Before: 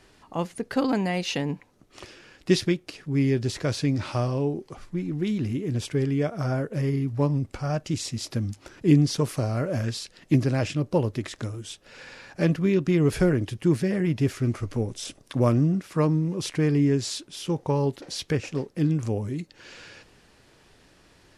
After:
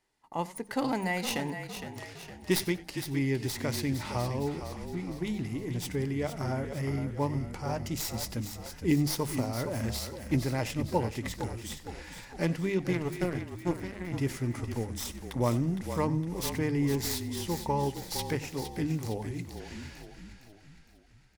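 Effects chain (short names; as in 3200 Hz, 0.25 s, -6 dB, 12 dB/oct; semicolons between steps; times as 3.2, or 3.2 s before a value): tracing distortion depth 0.066 ms; gate -51 dBFS, range -17 dB; high shelf 6700 Hz +11.5 dB; notches 50/100/150/200 Hz; small resonant body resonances 880/2000 Hz, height 10 dB, ringing for 20 ms; 12.93–14.12 power-law curve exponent 2; frequency-shifting echo 0.461 s, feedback 51%, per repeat -37 Hz, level -9 dB; warbling echo 93 ms, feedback 31%, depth 113 cents, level -19 dB; gain -7 dB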